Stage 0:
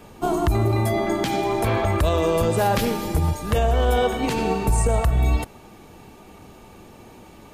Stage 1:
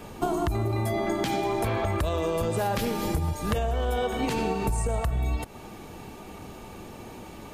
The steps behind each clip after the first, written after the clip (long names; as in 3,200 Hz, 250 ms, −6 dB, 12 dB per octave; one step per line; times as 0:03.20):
downward compressor 6 to 1, threshold −27 dBFS, peak gain reduction 11.5 dB
level +3 dB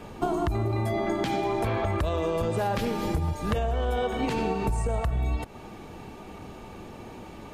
high-shelf EQ 7,000 Hz −11 dB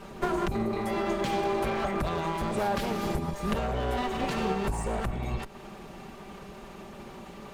lower of the sound and its delayed copy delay 5.1 ms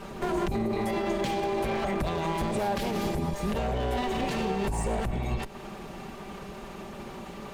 dynamic equaliser 1,300 Hz, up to −6 dB, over −48 dBFS, Q 2.6
brickwall limiter −24 dBFS, peak gain reduction 8.5 dB
level +3.5 dB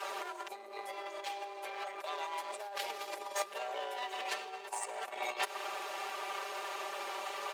comb filter 5.1 ms, depth 91%
compressor whose output falls as the input rises −29 dBFS, ratio −0.5
Bessel high-pass filter 750 Hz, order 6
level −2.5 dB